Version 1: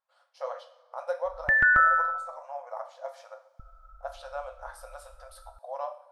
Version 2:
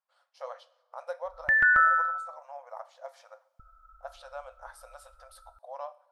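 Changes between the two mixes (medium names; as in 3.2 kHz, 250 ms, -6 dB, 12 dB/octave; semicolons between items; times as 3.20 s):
speech: send -9.0 dB; master: add bass shelf 470 Hz -8 dB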